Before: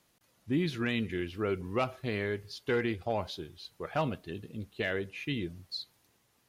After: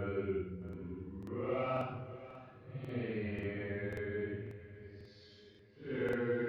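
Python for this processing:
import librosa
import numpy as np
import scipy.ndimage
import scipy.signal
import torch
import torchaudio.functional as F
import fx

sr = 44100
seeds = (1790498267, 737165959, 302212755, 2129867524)

y = scipy.signal.sosfilt(scipy.signal.butter(2, 1900.0, 'lowpass', fs=sr, output='sos'), x)
y = fx.paulstretch(y, sr, seeds[0], factor=4.9, window_s=0.1, from_s=1.47)
y = fx.peak_eq(y, sr, hz=920.0, db=-6.0, octaves=1.2)
y = fx.echo_feedback(y, sr, ms=619, feedback_pct=50, wet_db=-16)
y = fx.buffer_crackle(y, sr, first_s=0.64, period_s=0.54, block=2048, kind='repeat')
y = y * librosa.db_to_amplitude(-5.0)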